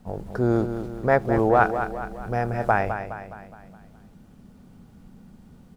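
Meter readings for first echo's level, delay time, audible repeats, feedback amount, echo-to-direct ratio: −9.0 dB, 208 ms, 5, 49%, −8.0 dB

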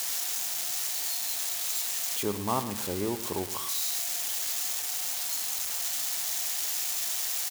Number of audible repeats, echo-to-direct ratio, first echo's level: 2, −13.0 dB, −13.5 dB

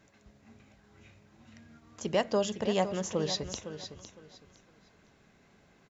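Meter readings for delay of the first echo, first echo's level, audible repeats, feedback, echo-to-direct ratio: 509 ms, −11.0 dB, 2, 24%, −10.5 dB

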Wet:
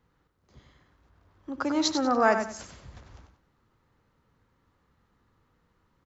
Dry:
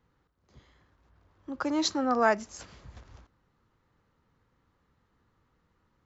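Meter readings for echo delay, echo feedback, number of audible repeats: 95 ms, 27%, 3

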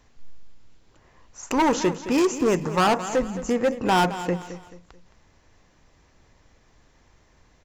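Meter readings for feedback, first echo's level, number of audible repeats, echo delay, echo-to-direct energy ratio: 35%, −13.0 dB, 3, 217 ms, −12.5 dB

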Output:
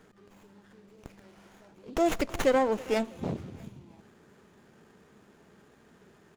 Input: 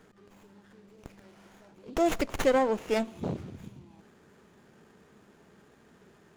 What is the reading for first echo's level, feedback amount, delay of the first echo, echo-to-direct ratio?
−21.5 dB, 36%, 323 ms, −21.0 dB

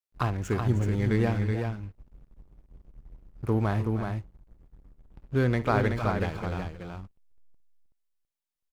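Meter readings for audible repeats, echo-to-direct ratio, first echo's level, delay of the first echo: 3, −4.5 dB, −16.0 dB, 56 ms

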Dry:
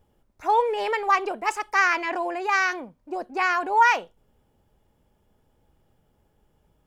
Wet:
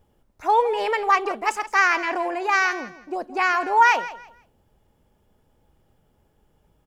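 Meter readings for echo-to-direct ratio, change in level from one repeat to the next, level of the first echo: −15.0 dB, −12.0 dB, −15.5 dB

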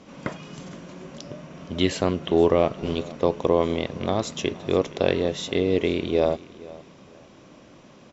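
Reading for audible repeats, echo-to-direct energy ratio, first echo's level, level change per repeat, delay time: 2, −19.5 dB, −20.0 dB, −11.5 dB, 469 ms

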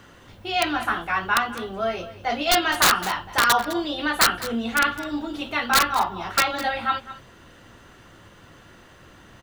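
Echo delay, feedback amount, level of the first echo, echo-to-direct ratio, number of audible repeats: 207 ms, repeats not evenly spaced, −15.5 dB, −15.5 dB, 1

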